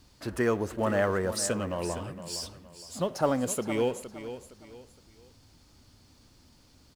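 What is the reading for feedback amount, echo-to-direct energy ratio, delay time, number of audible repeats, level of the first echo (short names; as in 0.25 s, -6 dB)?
32%, -11.5 dB, 0.464 s, 3, -12.0 dB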